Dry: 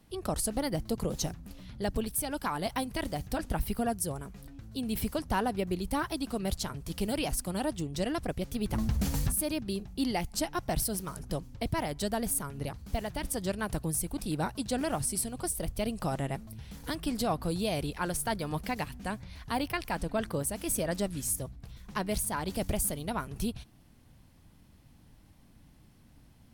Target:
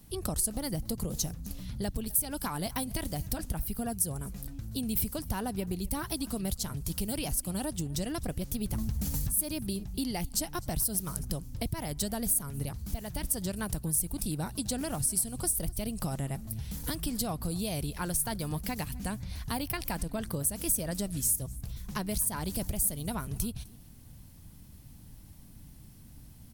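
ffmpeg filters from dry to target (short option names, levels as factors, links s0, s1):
-af "bass=f=250:g=8,treble=f=4000:g=7,acompressor=threshold=0.0282:ratio=4,highshelf=f=10000:g=10.5,aecho=1:1:255:0.0668"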